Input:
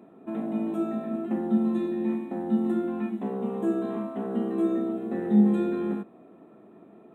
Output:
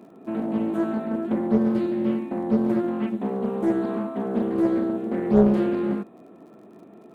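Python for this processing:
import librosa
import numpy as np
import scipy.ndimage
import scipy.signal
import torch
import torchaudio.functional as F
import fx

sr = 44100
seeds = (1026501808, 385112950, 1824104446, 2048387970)

y = fx.dmg_crackle(x, sr, seeds[0], per_s=60.0, level_db=-53.0)
y = fx.doppler_dist(y, sr, depth_ms=0.93)
y = y * 10.0 ** (4.0 / 20.0)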